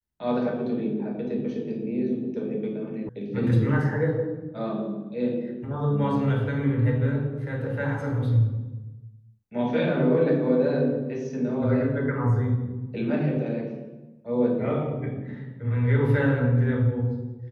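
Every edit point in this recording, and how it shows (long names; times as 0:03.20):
0:03.09: cut off before it has died away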